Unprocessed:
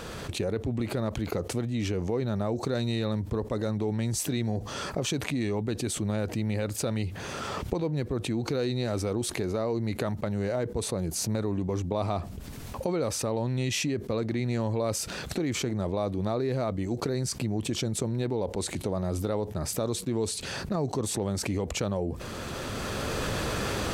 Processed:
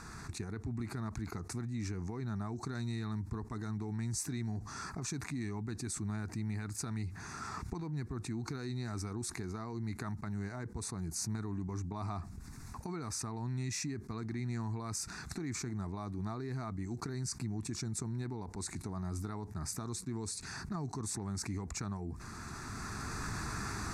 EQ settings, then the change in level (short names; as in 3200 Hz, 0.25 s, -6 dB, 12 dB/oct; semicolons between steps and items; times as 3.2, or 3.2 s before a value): LPF 7300 Hz 12 dB/oct; high shelf 3900 Hz +7.5 dB; fixed phaser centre 1300 Hz, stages 4; -6.5 dB